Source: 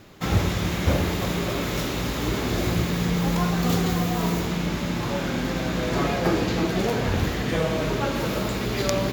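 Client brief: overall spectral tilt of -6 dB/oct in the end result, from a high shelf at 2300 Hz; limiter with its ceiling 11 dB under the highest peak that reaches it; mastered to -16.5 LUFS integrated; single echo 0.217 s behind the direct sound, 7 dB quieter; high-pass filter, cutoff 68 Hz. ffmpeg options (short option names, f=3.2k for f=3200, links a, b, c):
-af "highpass=68,highshelf=f=2.3k:g=-8,alimiter=limit=-20dB:level=0:latency=1,aecho=1:1:217:0.447,volume=12dB"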